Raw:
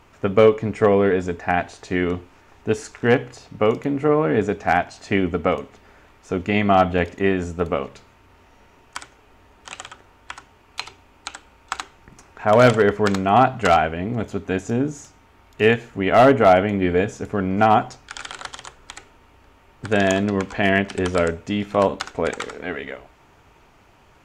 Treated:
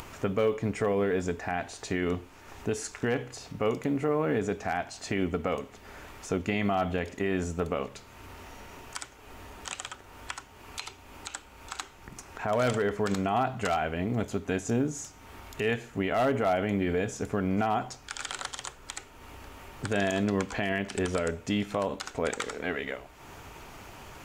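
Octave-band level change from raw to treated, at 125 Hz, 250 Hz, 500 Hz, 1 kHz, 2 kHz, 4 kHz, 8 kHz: -8.0, -8.0, -10.5, -12.0, -9.5, -7.0, -1.0 dB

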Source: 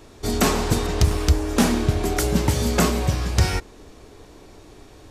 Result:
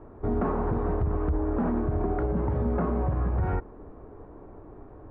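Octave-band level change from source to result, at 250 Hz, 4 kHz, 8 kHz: -6.0 dB, under -35 dB, under -40 dB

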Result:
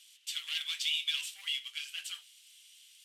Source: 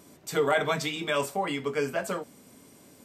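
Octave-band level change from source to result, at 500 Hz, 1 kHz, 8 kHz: under -40 dB, -31.0 dB, -2.5 dB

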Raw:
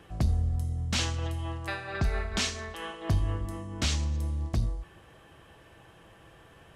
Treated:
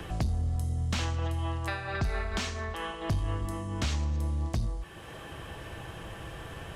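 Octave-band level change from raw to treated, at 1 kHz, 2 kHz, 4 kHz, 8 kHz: +2.5, -0.5, -4.5, -6.0 dB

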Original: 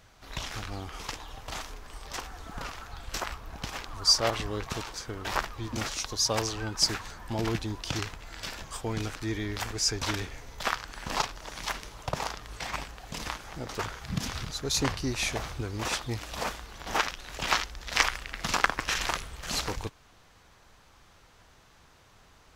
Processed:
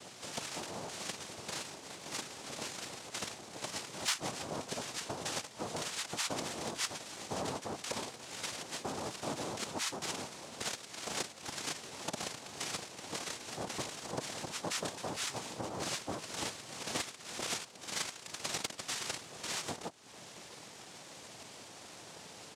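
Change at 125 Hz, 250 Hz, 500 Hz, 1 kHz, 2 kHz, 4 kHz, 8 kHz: -13.0, -7.5, -5.5, -8.0, -9.5, -8.0, -4.5 dB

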